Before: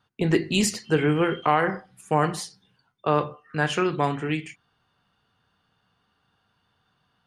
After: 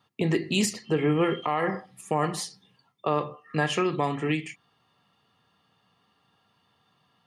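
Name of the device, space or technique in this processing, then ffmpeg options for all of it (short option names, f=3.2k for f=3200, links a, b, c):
PA system with an anti-feedback notch: -filter_complex "[0:a]asettb=1/sr,asplit=3[a][b][c];[a]atrim=end=0.734[d];[b]atrim=start=0.73:end=1.21,asetpts=PTS-STARTPTS,afade=t=in:d=0.004:c=qsin,afade=t=out:st=0.476:d=0.004:c=qsin,highshelf=f=4.9k:g=-11.5[e];[c]atrim=start=1.206[f];[d][e]acrossfade=d=0.004:c1=hsin:c2=qsin[g];[g][f]acrossfade=d=0.004:c1=qsin:c2=hsin,highpass=120,asuperstop=centerf=1500:order=8:qfactor=7.2,alimiter=limit=-17.5dB:level=0:latency=1:release=302,volume=3dB"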